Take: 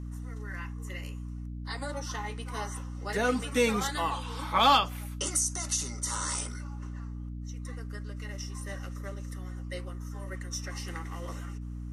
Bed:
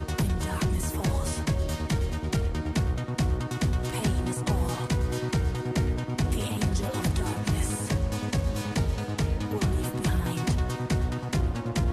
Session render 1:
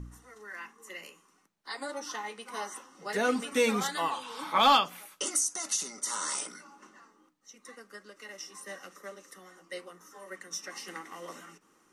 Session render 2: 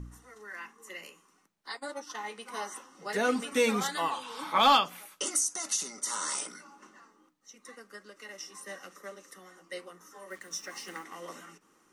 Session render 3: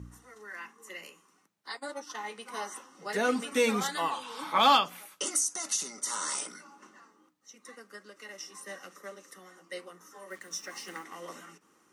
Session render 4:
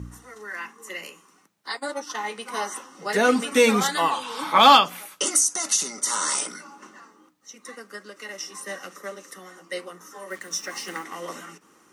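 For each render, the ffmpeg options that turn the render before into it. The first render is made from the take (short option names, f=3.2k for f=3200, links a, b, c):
-af "bandreject=f=60:t=h:w=4,bandreject=f=120:t=h:w=4,bandreject=f=180:t=h:w=4,bandreject=f=240:t=h:w=4,bandreject=f=300:t=h:w=4"
-filter_complex "[0:a]asplit=3[a][b][c];[a]afade=t=out:st=1.71:d=0.02[d];[b]agate=range=-33dB:threshold=-36dB:ratio=3:release=100:detection=peak,afade=t=in:st=1.71:d=0.02,afade=t=out:st=2.2:d=0.02[e];[c]afade=t=in:st=2.2:d=0.02[f];[d][e][f]amix=inputs=3:normalize=0,asettb=1/sr,asplit=3[g][h][i];[g]atrim=end=10.304[j];[h]atrim=start=10.3:end=11.04,asetpts=PTS-STARTPTS,afade=t=in:d=0.004:c=qsin,afade=t=out:st=0.736:d=0.004:c=qsin,acrusher=bits=8:mix=0:aa=0.5[k];[i]atrim=start=11.036[l];[j][k]acrossfade=d=0.004:c1=hsin:c2=qsin[m];[m][l]acrossfade=d=0.004:c1=qsin:c2=hsin"
-af "highpass=66"
-af "volume=8.5dB"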